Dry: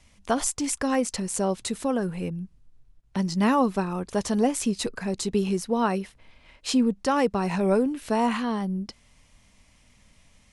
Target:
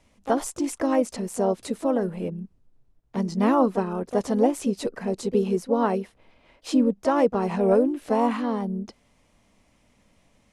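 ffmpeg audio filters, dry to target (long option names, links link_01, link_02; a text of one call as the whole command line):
ffmpeg -i in.wav -filter_complex "[0:a]asplit=2[link_01][link_02];[link_02]asetrate=52444,aresample=44100,atempo=0.840896,volume=-9dB[link_03];[link_01][link_03]amix=inputs=2:normalize=0,equalizer=frequency=450:width=0.42:gain=11.5,volume=-8dB" out.wav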